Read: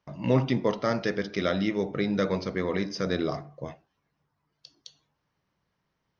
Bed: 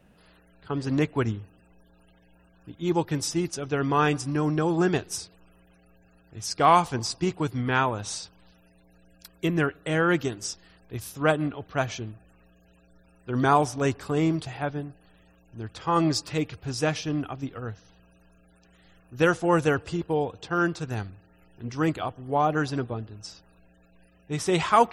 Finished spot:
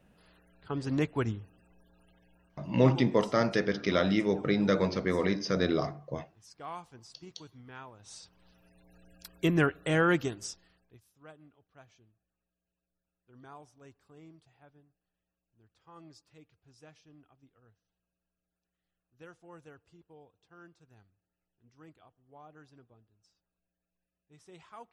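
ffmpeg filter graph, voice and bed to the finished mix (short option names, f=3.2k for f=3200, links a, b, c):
-filter_complex "[0:a]adelay=2500,volume=0dB[a];[1:a]volume=17.5dB,afade=t=out:st=2.25:d=0.87:silence=0.11885,afade=t=in:st=7.99:d=1.01:silence=0.0749894,afade=t=out:st=9.87:d=1.14:silence=0.0354813[b];[a][b]amix=inputs=2:normalize=0"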